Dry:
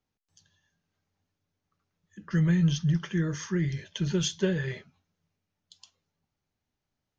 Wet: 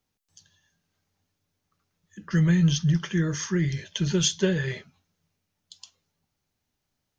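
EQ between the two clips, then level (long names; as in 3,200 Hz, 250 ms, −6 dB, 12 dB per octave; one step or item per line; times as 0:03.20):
high-shelf EQ 3,700 Hz +6.5 dB
+3.0 dB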